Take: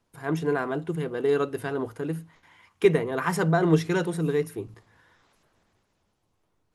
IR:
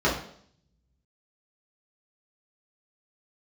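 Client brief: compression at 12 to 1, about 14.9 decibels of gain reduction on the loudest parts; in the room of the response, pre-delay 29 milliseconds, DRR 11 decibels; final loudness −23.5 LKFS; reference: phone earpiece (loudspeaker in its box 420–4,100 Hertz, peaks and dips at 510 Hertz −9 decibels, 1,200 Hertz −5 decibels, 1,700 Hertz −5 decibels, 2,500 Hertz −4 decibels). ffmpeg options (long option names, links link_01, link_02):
-filter_complex "[0:a]acompressor=threshold=-29dB:ratio=12,asplit=2[link_01][link_02];[1:a]atrim=start_sample=2205,adelay=29[link_03];[link_02][link_03]afir=irnorm=-1:irlink=0,volume=-27dB[link_04];[link_01][link_04]amix=inputs=2:normalize=0,highpass=420,equalizer=frequency=510:width_type=q:width=4:gain=-9,equalizer=frequency=1200:width_type=q:width=4:gain=-5,equalizer=frequency=1700:width_type=q:width=4:gain=-5,equalizer=frequency=2500:width_type=q:width=4:gain=-4,lowpass=frequency=4100:width=0.5412,lowpass=frequency=4100:width=1.3066,volume=17.5dB"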